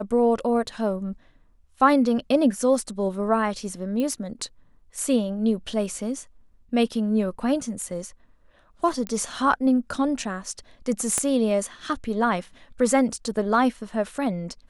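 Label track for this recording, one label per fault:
4.000000	4.000000	click −17 dBFS
9.070000	9.070000	click −16 dBFS
11.180000	11.180000	click −10 dBFS

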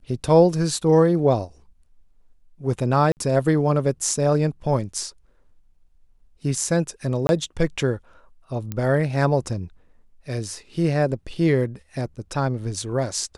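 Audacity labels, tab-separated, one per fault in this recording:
3.120000	3.170000	drop-out 49 ms
7.270000	7.290000	drop-out 21 ms
8.720000	8.720000	click −15 dBFS

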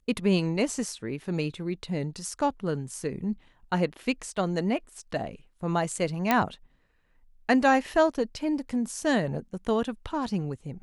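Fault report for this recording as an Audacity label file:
6.310000	6.310000	click −8 dBFS

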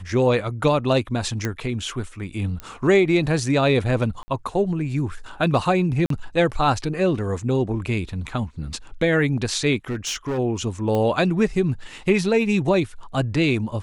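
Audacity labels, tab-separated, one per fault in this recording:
1.450000	1.450000	click −11 dBFS
2.600000	2.600000	click −18 dBFS
4.230000	4.280000	drop-out 50 ms
6.060000	6.100000	drop-out 43 ms
9.890000	10.390000	clipping −22 dBFS
10.950000	10.950000	click −13 dBFS

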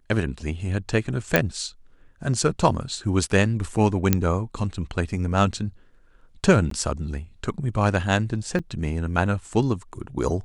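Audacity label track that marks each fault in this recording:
1.360000	1.360000	click −3 dBFS
4.130000	4.130000	click −3 dBFS
6.700000	6.710000	drop-out 13 ms
8.590000	8.600000	drop-out 5.7 ms

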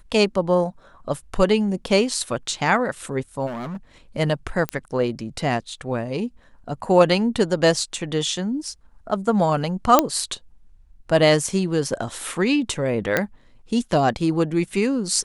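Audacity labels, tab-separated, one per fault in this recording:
3.460000	3.770000	clipping −27.5 dBFS
4.690000	4.690000	click −10 dBFS
9.990000	9.990000	click 0 dBFS
13.170000	13.170000	click −5 dBFS

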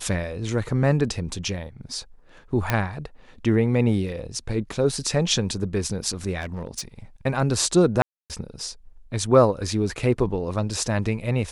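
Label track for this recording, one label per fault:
2.700000	2.700000	click −7 dBFS
6.410000	6.810000	clipping −25.5 dBFS
8.020000	8.300000	drop-out 278 ms

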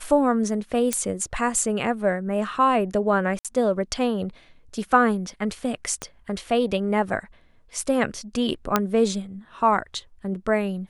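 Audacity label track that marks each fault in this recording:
0.930000	0.930000	click −8 dBFS
3.390000	3.450000	drop-out 57 ms
6.020000	6.020000	click −15 dBFS
8.760000	8.760000	click −4 dBFS

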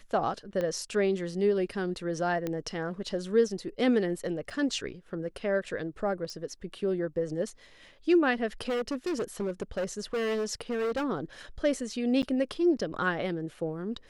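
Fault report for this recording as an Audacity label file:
0.610000	0.610000	click −20 dBFS
2.470000	2.470000	click −19 dBFS
4.500000	4.510000	drop-out 6.1 ms
6.300000	6.300000	click −27 dBFS
8.680000	11.050000	clipping −27 dBFS
12.220000	12.230000	drop-out 9 ms

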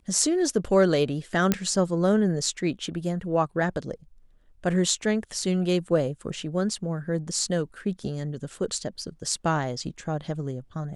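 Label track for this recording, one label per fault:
1.520000	1.520000	click −7 dBFS

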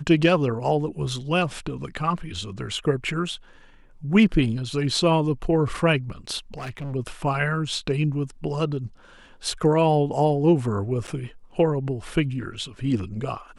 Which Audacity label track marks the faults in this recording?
6.540000	6.940000	clipping −29 dBFS
11.070000	11.080000	drop-out 8.1 ms

